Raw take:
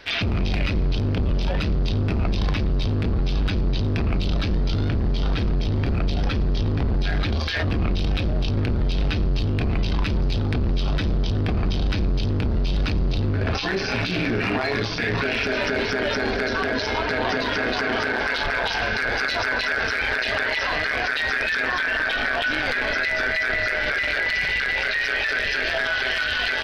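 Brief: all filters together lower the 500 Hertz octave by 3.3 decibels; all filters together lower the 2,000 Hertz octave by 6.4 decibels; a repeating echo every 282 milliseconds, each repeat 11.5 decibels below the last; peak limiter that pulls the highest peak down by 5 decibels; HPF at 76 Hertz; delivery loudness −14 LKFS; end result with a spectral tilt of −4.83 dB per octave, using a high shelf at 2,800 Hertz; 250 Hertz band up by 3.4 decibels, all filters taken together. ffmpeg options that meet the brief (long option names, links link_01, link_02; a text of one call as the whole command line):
ffmpeg -i in.wav -af "highpass=76,equalizer=frequency=250:width_type=o:gain=6,equalizer=frequency=500:width_type=o:gain=-6,equalizer=frequency=2000:width_type=o:gain=-6,highshelf=frequency=2800:gain=-5.5,alimiter=limit=-17dB:level=0:latency=1,aecho=1:1:282|564|846:0.266|0.0718|0.0194,volume=12.5dB" out.wav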